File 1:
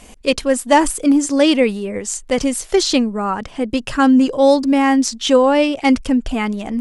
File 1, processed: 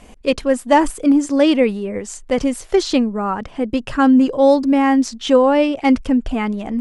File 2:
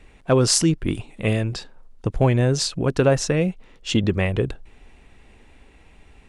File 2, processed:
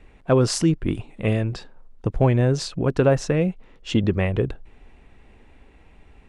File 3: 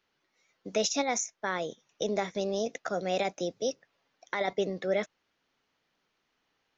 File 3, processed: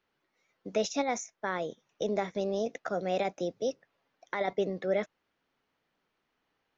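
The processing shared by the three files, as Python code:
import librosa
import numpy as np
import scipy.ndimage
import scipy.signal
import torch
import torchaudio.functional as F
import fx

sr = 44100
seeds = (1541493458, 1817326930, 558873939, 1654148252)

y = fx.high_shelf(x, sr, hz=3300.0, db=-10.0)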